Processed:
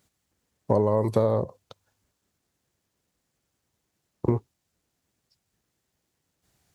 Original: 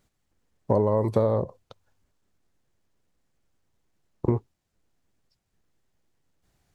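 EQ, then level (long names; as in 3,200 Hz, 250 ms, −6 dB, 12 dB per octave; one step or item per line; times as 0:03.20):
high-pass filter 61 Hz
high-shelf EQ 3,500 Hz +6.5 dB
0.0 dB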